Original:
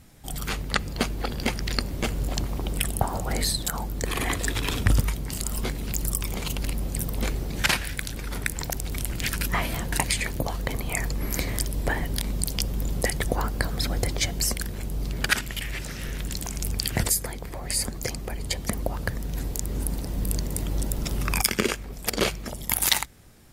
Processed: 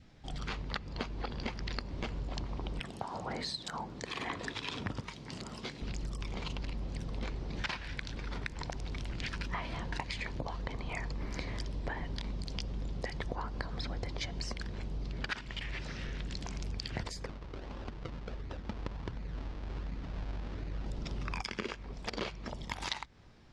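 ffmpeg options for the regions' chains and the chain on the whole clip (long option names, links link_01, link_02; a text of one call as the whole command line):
ffmpeg -i in.wav -filter_complex "[0:a]asettb=1/sr,asplit=3[link_01][link_02][link_03];[link_01]atrim=end=2.804[link_04];[link_02]atrim=start=2.8:end=5.82,asetpts=PTS-STARTPTS,afade=type=in:duration=0.004:curve=qsin,afade=type=out:start_time=3.016:duration=0.004:curve=qsin,highpass=130,highshelf=frequency=7600:gain=6,acrossover=split=2200[link_05][link_06];[link_05]aeval=exprs='val(0)*(1-0.5/2+0.5/2*cos(2*PI*1.9*n/s))':channel_layout=same[link_07];[link_06]aeval=exprs='val(0)*(1-0.5/2-0.5/2*cos(2*PI*1.9*n/s))':channel_layout=same[link_08];[link_07][link_08]amix=inputs=2:normalize=0[link_09];[link_03]atrim=start=5.816[link_10];[link_04][link_09]acrossfade=duration=0.004:curve1=hsin:curve2=qsin[link_11];[link_11][link_10]acrossfade=duration=0.004:curve1=qsin:curve2=hsin,asettb=1/sr,asplit=3[link_12][link_13][link_14];[link_12]atrim=end=17.264[link_15];[link_13]atrim=start=17.26:end=20.86,asetpts=PTS-STARTPTS,afade=type=in:duration=0.004:curve=qsin,afade=type=out:start_time=3.596:duration=0.004:curve=qsin,highshelf=frequency=2800:width_type=q:width=1.5:gain=-13.5,acrusher=samples=39:mix=1:aa=0.000001:lfo=1:lforange=39:lforate=1.4,flanger=delay=0.6:depth=3.4:regen=-61:speed=1.1:shape=triangular[link_16];[link_14]atrim=start=20.856[link_17];[link_15][link_16]acrossfade=duration=0.004:curve1=hsin:curve2=qsin[link_18];[link_18][link_17]acrossfade=duration=0.004:curve1=qsin:curve2=hsin,lowpass=frequency=5200:width=0.5412,lowpass=frequency=5200:width=1.3066,adynamicequalizer=threshold=0.00447:dfrequency=990:dqfactor=3.5:tfrequency=990:tqfactor=3.5:attack=5:release=100:ratio=0.375:range=3:mode=boostabove:tftype=bell,acompressor=threshold=-29dB:ratio=4,volume=-5.5dB" out.wav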